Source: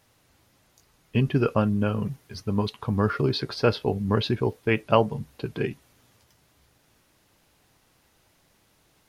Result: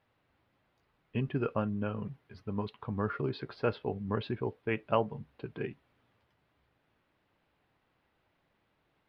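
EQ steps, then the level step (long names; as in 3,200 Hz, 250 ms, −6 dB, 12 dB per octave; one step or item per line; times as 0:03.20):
high-frequency loss of the air 460 metres
spectral tilt +1.5 dB per octave
−6.0 dB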